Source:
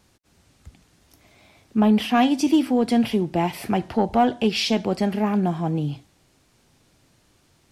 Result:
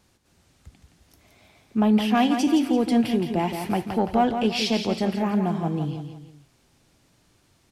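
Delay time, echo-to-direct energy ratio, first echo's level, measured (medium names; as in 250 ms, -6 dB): 169 ms, -6.5 dB, -7.5 dB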